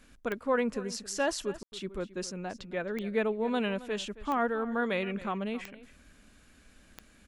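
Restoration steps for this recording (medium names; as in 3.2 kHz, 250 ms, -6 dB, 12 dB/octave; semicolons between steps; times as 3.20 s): de-click; room tone fill 1.63–1.72 s; inverse comb 270 ms -17 dB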